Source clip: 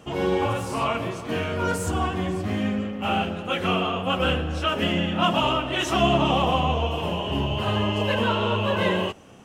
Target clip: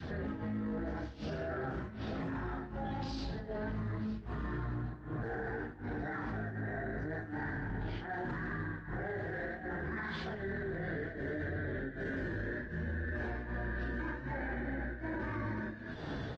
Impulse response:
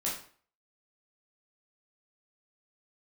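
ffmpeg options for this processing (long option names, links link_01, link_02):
-filter_complex "[0:a]aecho=1:1:21|70:0.422|0.282,flanger=delay=7.1:depth=3.8:regen=-19:speed=1.2:shape=sinusoidal,adynamicequalizer=threshold=0.01:dfrequency=1000:dqfactor=1.3:tfrequency=1000:tqfactor=1.3:attack=5:release=100:ratio=0.375:range=3.5:mode=cutabove:tftype=bell,lowpass=7600,acrossover=split=150[link_01][link_02];[link_01]acompressor=threshold=-30dB:ratio=8[link_03];[link_03][link_02]amix=inputs=2:normalize=0,asetrate=25442,aresample=44100,tremolo=f=1.3:d=0.96,acompressor=threshold=-40dB:ratio=20,lowshelf=frequency=140:gain=-2,alimiter=level_in=20dB:limit=-24dB:level=0:latency=1:release=14,volume=-20dB,volume=13.5dB" -ar 48000 -c:a libopus -b:a 24k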